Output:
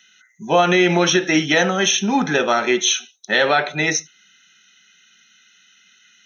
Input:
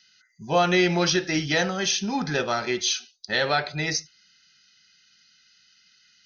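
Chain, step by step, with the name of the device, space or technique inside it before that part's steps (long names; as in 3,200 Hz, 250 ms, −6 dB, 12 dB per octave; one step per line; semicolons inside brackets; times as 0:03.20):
PA system with an anti-feedback notch (high-pass filter 180 Hz 24 dB per octave; Butterworth band-reject 4,700 Hz, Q 2.6; brickwall limiter −14.5 dBFS, peak gain reduction 4.5 dB)
level +9 dB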